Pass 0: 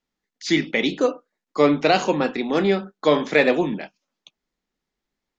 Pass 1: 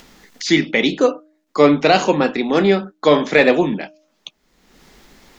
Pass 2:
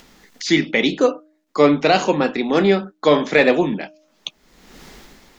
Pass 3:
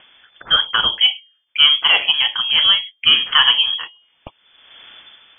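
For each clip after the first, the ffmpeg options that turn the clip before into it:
-af "apsyclip=7.5dB,acompressor=mode=upward:threshold=-21dB:ratio=2.5,bandreject=f=308.5:t=h:w=4,bandreject=f=617:t=h:w=4,volume=-2.5dB"
-af "dynaudnorm=f=100:g=9:m=10dB,volume=-2.5dB"
-af "lowpass=f=3k:t=q:w=0.5098,lowpass=f=3k:t=q:w=0.6013,lowpass=f=3k:t=q:w=0.9,lowpass=f=3k:t=q:w=2.563,afreqshift=-3500,volume=1dB"

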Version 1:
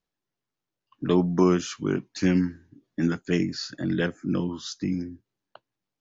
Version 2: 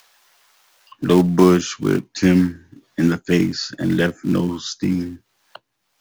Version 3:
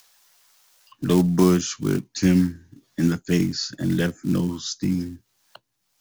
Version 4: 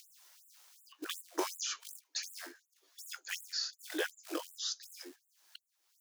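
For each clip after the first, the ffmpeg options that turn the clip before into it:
-filter_complex "[0:a]acrossover=split=300|640[a][b][c];[b]acrusher=bits=3:mode=log:mix=0:aa=0.000001[d];[c]acompressor=mode=upward:threshold=-42dB:ratio=2.5[e];[a][d][e]amix=inputs=3:normalize=0,volume=7.5dB"
-af "bass=f=250:g=7,treble=f=4k:g=9,volume=-7.5dB"
-filter_complex "[0:a]asoftclip=type=tanh:threshold=-10.5dB,acrossover=split=420|1400|4800[a][b][c][d];[a]acompressor=threshold=-29dB:ratio=4[e];[b]acompressor=threshold=-31dB:ratio=4[f];[c]acompressor=threshold=-35dB:ratio=4[g];[d]acompressor=threshold=-40dB:ratio=4[h];[e][f][g][h]amix=inputs=4:normalize=0,afftfilt=real='re*gte(b*sr/1024,270*pow(7300/270,0.5+0.5*sin(2*PI*2.7*pts/sr)))':imag='im*gte(b*sr/1024,270*pow(7300/270,0.5+0.5*sin(2*PI*2.7*pts/sr)))':win_size=1024:overlap=0.75,volume=-2.5dB"

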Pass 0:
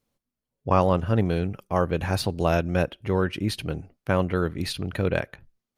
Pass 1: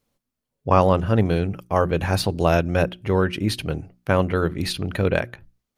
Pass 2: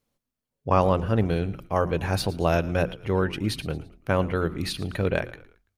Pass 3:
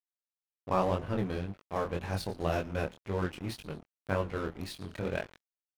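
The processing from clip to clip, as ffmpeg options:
-af "bandreject=f=60:t=h:w=6,bandreject=f=120:t=h:w=6,bandreject=f=180:t=h:w=6,bandreject=f=240:t=h:w=6,bandreject=f=300:t=h:w=6,bandreject=f=360:t=h:w=6,volume=4dB"
-filter_complex "[0:a]asplit=4[a][b][c][d];[b]adelay=112,afreqshift=-53,volume=-18dB[e];[c]adelay=224,afreqshift=-106,volume=-26dB[f];[d]adelay=336,afreqshift=-159,volume=-33.9dB[g];[a][e][f][g]amix=inputs=4:normalize=0,volume=-4dB"
-af "aeval=exprs='sgn(val(0))*max(abs(val(0))-0.02,0)':c=same,flanger=delay=19.5:depth=7.5:speed=1.9,volume=-4dB"

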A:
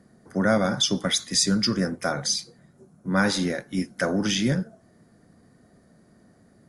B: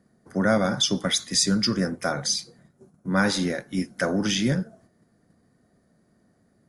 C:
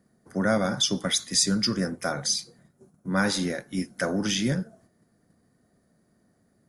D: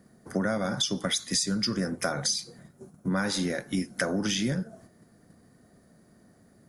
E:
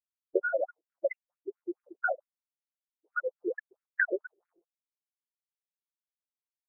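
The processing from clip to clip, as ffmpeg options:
-af "agate=range=-7dB:threshold=-53dB:ratio=16:detection=peak"
-af "highshelf=f=9.2k:g=7.5,volume=-2.5dB"
-af "acompressor=threshold=-33dB:ratio=6,volume=7.5dB"
-af "afftfilt=real='re*gte(hypot(re,im),0.141)':imag='im*gte(hypot(re,im),0.141)':win_size=1024:overlap=0.75,afftfilt=real='re*between(b*sr/1024,450*pow(2000/450,0.5+0.5*sin(2*PI*4.5*pts/sr))/1.41,450*pow(2000/450,0.5+0.5*sin(2*PI*4.5*pts/sr))*1.41)':imag='im*between(b*sr/1024,450*pow(2000/450,0.5+0.5*sin(2*PI*4.5*pts/sr))/1.41,450*pow(2000/450,0.5+0.5*sin(2*PI*4.5*pts/sr))*1.41)':win_size=1024:overlap=0.75,volume=7.5dB"

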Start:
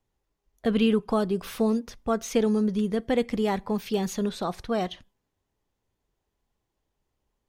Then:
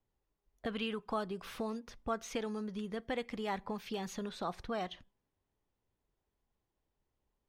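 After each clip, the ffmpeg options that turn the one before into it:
-filter_complex "[0:a]aemphasis=mode=reproduction:type=cd,acrossover=split=740|4900[a][b][c];[a]acompressor=threshold=-33dB:ratio=6[d];[d][b][c]amix=inputs=3:normalize=0,volume=-5.5dB"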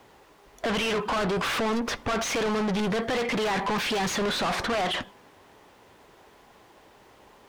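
-filter_complex "[0:a]asplit=2[a][b];[b]highpass=f=720:p=1,volume=38dB,asoftclip=type=tanh:threshold=-21.5dB[c];[a][c]amix=inputs=2:normalize=0,lowpass=f=2.1k:p=1,volume=-6dB,asoftclip=type=tanh:threshold=-31.5dB,volume=7.5dB"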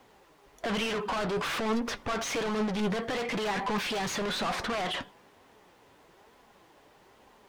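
-af "flanger=delay=3.7:depth=3.7:regen=66:speed=1.1:shape=triangular"

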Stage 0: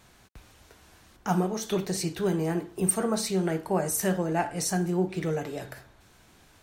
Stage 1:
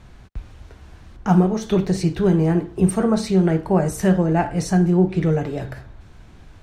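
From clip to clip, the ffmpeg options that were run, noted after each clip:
-af "aemphasis=mode=reproduction:type=bsi,volume=5.5dB"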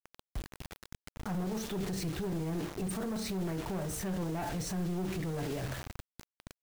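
-af "aeval=exprs='(tanh(6.31*val(0)+0.25)-tanh(0.25))/6.31':c=same,acrusher=bits=5:mix=0:aa=0.000001,alimiter=level_in=0.5dB:limit=-24dB:level=0:latency=1:release=13,volume=-0.5dB,volume=-5dB"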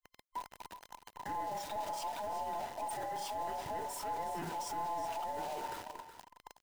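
-af "afftfilt=real='real(if(between(b,1,1008),(2*floor((b-1)/48)+1)*48-b,b),0)':imag='imag(if(between(b,1,1008),(2*floor((b-1)/48)+1)*48-b,b),0)*if(between(b,1,1008),-1,1)':win_size=2048:overlap=0.75,aecho=1:1:370:0.266,volume=-4.5dB"

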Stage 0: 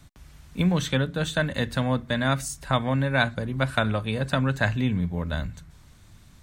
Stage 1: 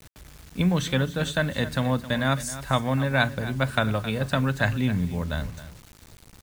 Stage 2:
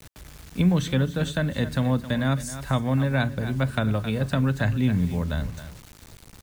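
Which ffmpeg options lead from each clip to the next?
-af "aecho=1:1:266:0.188,acrusher=bits=7:mix=0:aa=0.000001"
-filter_complex "[0:a]acrossover=split=440[a][b];[b]acompressor=threshold=-43dB:ratio=1.5[c];[a][c]amix=inputs=2:normalize=0,volume=2.5dB"

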